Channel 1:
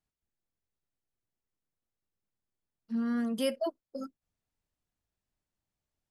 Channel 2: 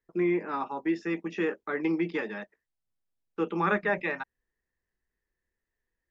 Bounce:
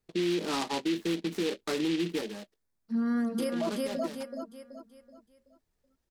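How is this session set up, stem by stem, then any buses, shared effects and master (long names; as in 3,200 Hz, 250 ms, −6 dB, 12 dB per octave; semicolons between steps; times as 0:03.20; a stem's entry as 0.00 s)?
+2.5 dB, 0.00 s, no send, echo send −4 dB, parametric band 2,900 Hz −9 dB 0.31 octaves
−0.5 dB, 0.00 s, no send, no echo send, tilt shelving filter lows +7.5 dB, about 1,300 Hz; short delay modulated by noise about 2,900 Hz, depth 0.11 ms; automatic ducking −15 dB, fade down 1.10 s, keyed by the first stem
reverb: not used
echo: repeating echo 378 ms, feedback 39%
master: brickwall limiter −22.5 dBFS, peak gain reduction 9.5 dB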